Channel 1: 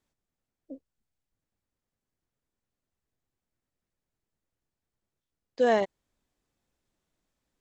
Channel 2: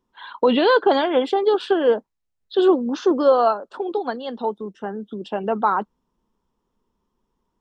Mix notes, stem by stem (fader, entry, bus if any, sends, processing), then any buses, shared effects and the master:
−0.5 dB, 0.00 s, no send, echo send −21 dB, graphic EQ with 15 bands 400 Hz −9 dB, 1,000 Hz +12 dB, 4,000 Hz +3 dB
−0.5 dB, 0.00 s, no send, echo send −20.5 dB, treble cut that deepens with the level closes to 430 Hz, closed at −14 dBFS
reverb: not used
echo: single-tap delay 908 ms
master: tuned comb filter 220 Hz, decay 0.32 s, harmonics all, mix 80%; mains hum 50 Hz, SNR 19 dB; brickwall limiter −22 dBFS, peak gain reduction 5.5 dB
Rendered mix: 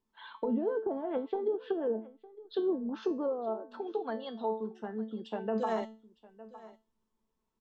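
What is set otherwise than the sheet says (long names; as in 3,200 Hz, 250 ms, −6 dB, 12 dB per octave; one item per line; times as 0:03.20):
stem 1: missing graphic EQ with 15 bands 400 Hz −9 dB, 1,000 Hz +12 dB, 4,000 Hz +3 dB
master: missing mains hum 50 Hz, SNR 19 dB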